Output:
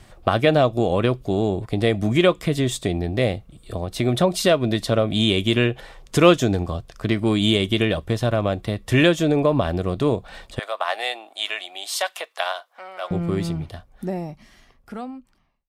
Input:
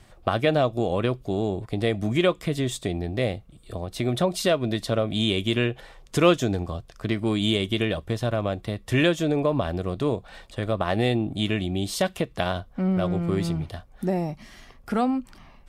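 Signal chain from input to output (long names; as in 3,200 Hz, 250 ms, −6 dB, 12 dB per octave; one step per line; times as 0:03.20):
fade-out on the ending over 3.39 s
0:10.59–0:13.11: high-pass filter 690 Hz 24 dB per octave
level +4.5 dB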